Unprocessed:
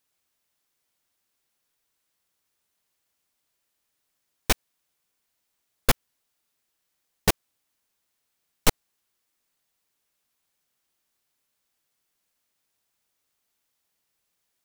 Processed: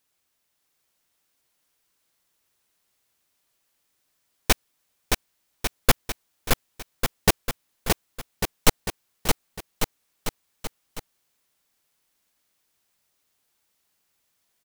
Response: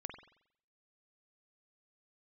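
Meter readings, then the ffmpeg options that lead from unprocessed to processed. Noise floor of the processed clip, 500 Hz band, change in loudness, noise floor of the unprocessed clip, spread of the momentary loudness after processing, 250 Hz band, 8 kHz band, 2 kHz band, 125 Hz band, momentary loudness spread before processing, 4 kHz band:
-74 dBFS, +4.5 dB, -0.5 dB, -78 dBFS, 17 LU, +4.5 dB, +4.5 dB, +4.5 dB, +4.5 dB, 4 LU, +4.5 dB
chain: -af "aecho=1:1:620|1147|1595|1976|2299:0.631|0.398|0.251|0.158|0.1,volume=1.33"

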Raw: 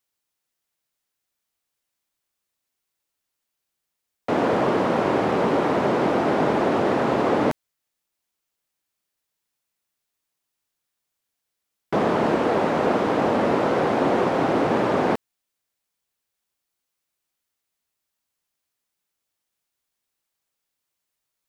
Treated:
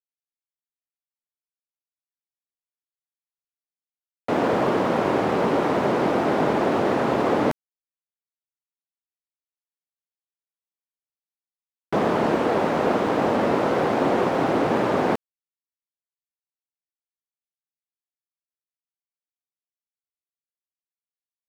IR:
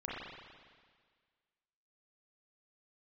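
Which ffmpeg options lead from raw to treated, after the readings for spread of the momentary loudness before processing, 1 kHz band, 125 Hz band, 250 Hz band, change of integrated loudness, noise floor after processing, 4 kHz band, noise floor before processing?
3 LU, -0.5 dB, -0.5 dB, -0.5 dB, -0.5 dB, under -85 dBFS, 0.0 dB, -82 dBFS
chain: -af "aeval=exprs='sgn(val(0))*max(abs(val(0))-0.00596,0)':c=same"

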